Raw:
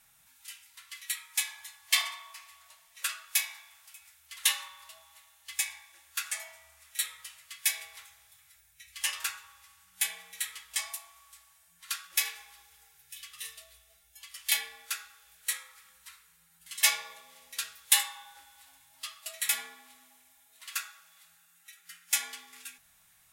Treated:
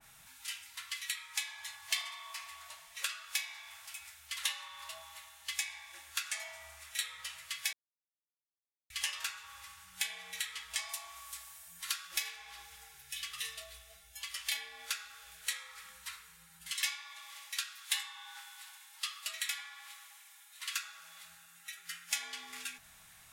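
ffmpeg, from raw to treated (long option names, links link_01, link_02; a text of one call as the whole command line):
ffmpeg -i in.wav -filter_complex "[0:a]asettb=1/sr,asplit=3[link_01][link_02][link_03];[link_01]atrim=end=10.894[link_04];[link_02]atrim=start=10.89:end=12.36,asetpts=PTS-STARTPTS,afade=type=in:duration=0.004:curve=qsin,afade=type=out:start_time=1.466:duration=0.004:curve=qsin,highshelf=frequency=7200:gain=10[link_05];[link_03]atrim=start=12.356[link_06];[link_04][link_05]acrossfade=duration=0.004:curve1=hsin:curve2=qsin[link_07];[link_07][link_06]acrossfade=duration=0.004:curve1=qsin:curve2=hsin,asettb=1/sr,asplit=3[link_08][link_09][link_10];[link_08]atrim=end=16.714[link_11];[link_09]atrim=start=16.71:end=20.83,asetpts=PTS-STARTPTS,afade=type=in:duration=0.004:curve=qsin,afade=type=out:start_time=4.116:duration=0.004:curve=qsin,highpass=frequency=1000:width=0.5412,highpass=frequency=1000:width=1.3066[link_12];[link_10]atrim=start=20.826[link_13];[link_11][link_12]acrossfade=duration=0.004:curve1=hsin:curve2=qsin[link_14];[link_14][link_13]acrossfade=duration=0.004:curve1=qsin:curve2=hsin,asplit=3[link_15][link_16][link_17];[link_15]atrim=end=7.73,asetpts=PTS-STARTPTS,afade=type=out:start_time=7.726:duration=0.004:curve=hsin[link_18];[link_16]atrim=start=7.73:end=8.9,asetpts=PTS-STARTPTS,volume=0[link_19];[link_17]atrim=start=8.9,asetpts=PTS-STARTPTS,afade=type=in:duration=0.004:curve=hsin[link_20];[link_18][link_19][link_20]concat=n=3:v=0:a=1,highshelf=frequency=10000:gain=-8,acrossover=split=2500|6600[link_21][link_22][link_23];[link_21]acompressor=threshold=-53dB:ratio=4[link_24];[link_22]acompressor=threshold=-46dB:ratio=4[link_25];[link_23]acompressor=threshold=-52dB:ratio=4[link_26];[link_24][link_25][link_26]amix=inputs=3:normalize=0,adynamicequalizer=threshold=0.00158:dfrequency=1800:dqfactor=0.7:tfrequency=1800:tqfactor=0.7:attack=5:release=100:ratio=0.375:range=1.5:mode=cutabove:tftype=highshelf,volume=8dB" out.wav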